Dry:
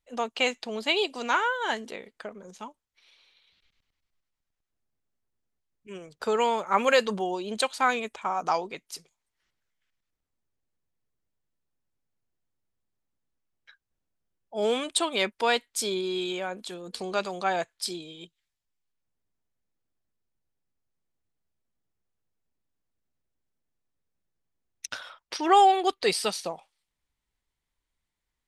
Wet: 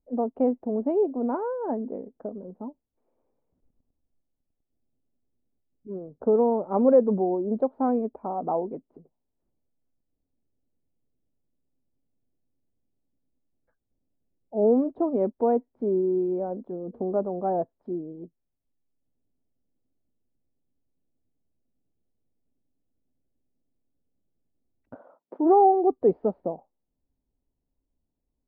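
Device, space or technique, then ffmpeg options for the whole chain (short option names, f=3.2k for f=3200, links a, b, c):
under water: -filter_complex "[0:a]asplit=3[a][b][c];[a]afade=t=out:st=24.94:d=0.02[d];[b]highpass=f=180:w=0.5412,highpass=f=180:w=1.3066,afade=t=in:st=24.94:d=0.02,afade=t=out:st=25.44:d=0.02[e];[c]afade=t=in:st=25.44:d=0.02[f];[d][e][f]amix=inputs=3:normalize=0,lowpass=f=680:w=0.5412,lowpass=f=680:w=1.3066,equalizer=f=260:t=o:w=0.41:g=9,volume=5dB"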